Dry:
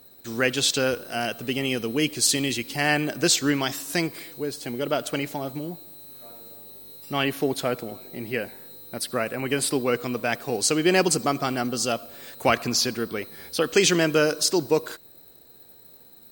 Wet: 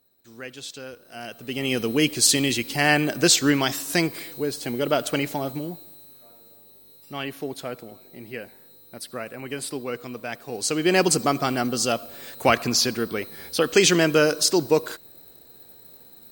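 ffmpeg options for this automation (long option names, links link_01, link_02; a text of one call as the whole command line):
ffmpeg -i in.wav -af "volume=12dB,afade=type=in:start_time=0.99:duration=0.47:silence=0.354813,afade=type=in:start_time=1.46:duration=0.33:silence=0.354813,afade=type=out:start_time=5.41:duration=0.84:silence=0.316228,afade=type=in:start_time=10.47:duration=0.64:silence=0.354813" out.wav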